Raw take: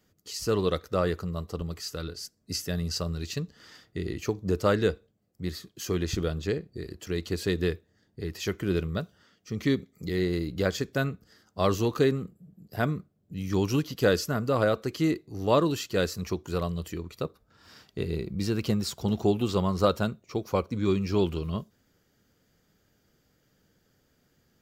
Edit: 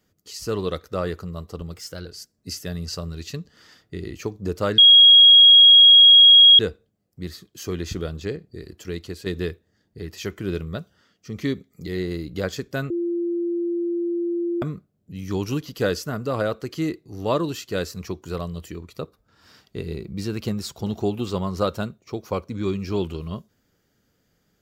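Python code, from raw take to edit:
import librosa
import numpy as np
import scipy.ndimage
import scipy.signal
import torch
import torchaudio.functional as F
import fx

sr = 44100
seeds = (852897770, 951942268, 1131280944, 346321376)

y = fx.edit(x, sr, fx.speed_span(start_s=1.74, length_s=0.36, speed=1.09),
    fx.insert_tone(at_s=4.81, length_s=1.81, hz=3290.0, db=-7.0),
    fx.fade_out_to(start_s=7.15, length_s=0.33, floor_db=-7.5),
    fx.bleep(start_s=11.12, length_s=1.72, hz=344.0, db=-21.5), tone=tone)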